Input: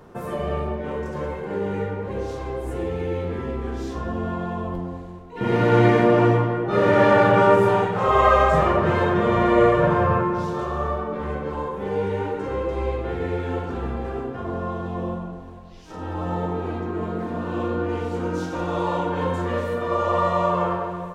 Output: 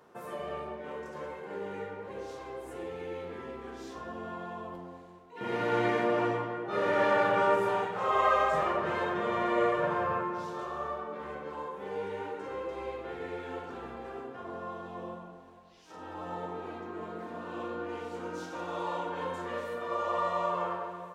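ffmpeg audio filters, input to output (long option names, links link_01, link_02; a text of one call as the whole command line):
ffmpeg -i in.wav -af "highpass=frequency=540:poles=1,volume=-7.5dB" out.wav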